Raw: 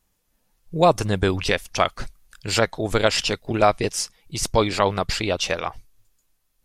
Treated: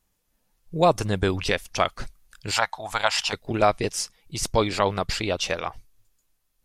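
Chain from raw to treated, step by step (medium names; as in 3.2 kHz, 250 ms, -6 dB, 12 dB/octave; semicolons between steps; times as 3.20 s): 2.51–3.33 s: resonant low shelf 580 Hz -12.5 dB, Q 3; trim -2.5 dB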